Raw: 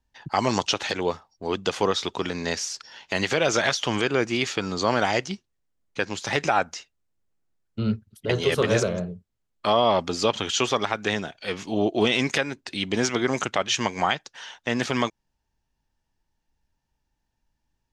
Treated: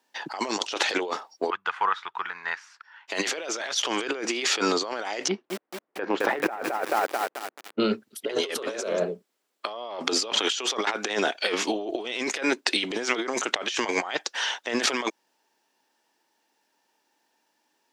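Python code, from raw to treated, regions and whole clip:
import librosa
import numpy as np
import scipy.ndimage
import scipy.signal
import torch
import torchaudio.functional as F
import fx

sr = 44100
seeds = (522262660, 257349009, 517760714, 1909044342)

y = fx.chain(x, sr, fx.curve_eq(hz=(130.0, 250.0, 580.0, 910.0, 1500.0, 5300.0), db=(0, -30, -26, -7, -2, -28)),
    fx.upward_expand(threshold_db=-48.0, expansion=1.5), at=(1.5, 3.08))
y = fx.chain(y, sr, fx.lowpass(hz=1500.0, slope=12),
    fx.low_shelf(hz=110.0, db=8.0),
    fx.echo_crushed(ms=218, feedback_pct=55, bits=7, wet_db=-5.0), at=(5.28, 7.8))
y = scipy.signal.sosfilt(scipy.signal.butter(4, 310.0, 'highpass', fs=sr, output='sos'), y)
y = fx.notch(y, sr, hz=6500.0, q=29.0)
y = fx.over_compress(y, sr, threshold_db=-34.0, ratio=-1.0)
y = F.gain(torch.from_numpy(y), 5.5).numpy()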